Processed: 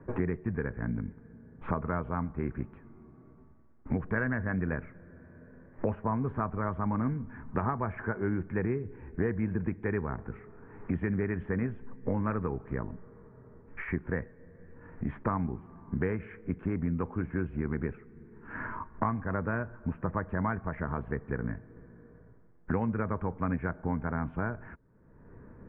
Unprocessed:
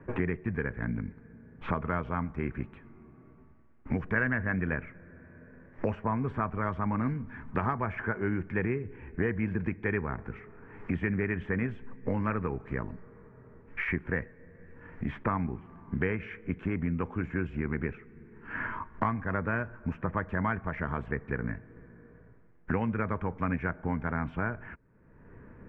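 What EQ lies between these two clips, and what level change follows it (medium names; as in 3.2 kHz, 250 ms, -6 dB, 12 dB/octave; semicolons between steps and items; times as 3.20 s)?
low-pass 1.4 kHz 12 dB/octave; 0.0 dB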